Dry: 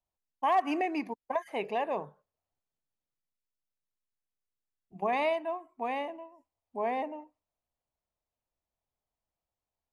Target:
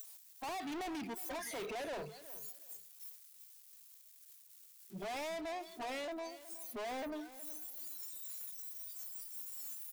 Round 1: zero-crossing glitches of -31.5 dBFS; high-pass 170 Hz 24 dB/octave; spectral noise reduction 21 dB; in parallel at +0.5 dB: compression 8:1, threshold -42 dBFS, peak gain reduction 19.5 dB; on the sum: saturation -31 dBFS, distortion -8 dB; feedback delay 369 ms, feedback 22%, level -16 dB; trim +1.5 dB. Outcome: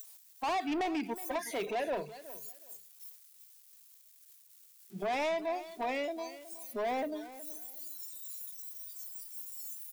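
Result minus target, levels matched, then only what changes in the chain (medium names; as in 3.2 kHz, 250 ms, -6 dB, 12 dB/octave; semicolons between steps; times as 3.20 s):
compression: peak gain reduction +6 dB; saturation: distortion -6 dB
change: compression 8:1, threshold -35 dBFS, peak gain reduction 13.5 dB; change: saturation -41.5 dBFS, distortion -1 dB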